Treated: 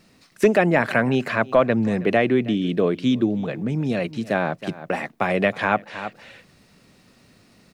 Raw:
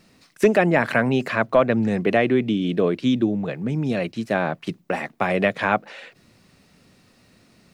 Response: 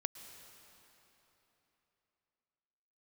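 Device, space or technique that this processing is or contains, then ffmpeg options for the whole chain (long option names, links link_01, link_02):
ducked delay: -filter_complex "[0:a]asplit=3[link_01][link_02][link_03];[link_02]adelay=318,volume=-5dB[link_04];[link_03]apad=whole_len=355215[link_05];[link_04][link_05]sidechaincompress=threshold=-46dB:ratio=3:attack=16:release=119[link_06];[link_01][link_06]amix=inputs=2:normalize=0"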